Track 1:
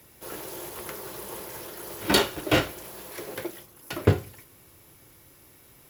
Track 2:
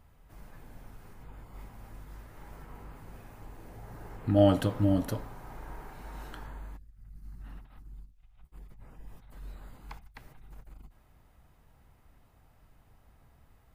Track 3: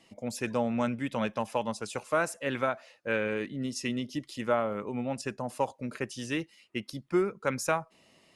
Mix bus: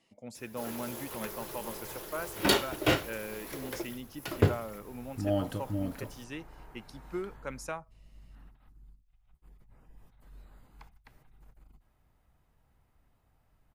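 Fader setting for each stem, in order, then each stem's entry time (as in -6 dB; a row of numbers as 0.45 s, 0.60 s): -4.0 dB, -8.0 dB, -10.0 dB; 0.35 s, 0.90 s, 0.00 s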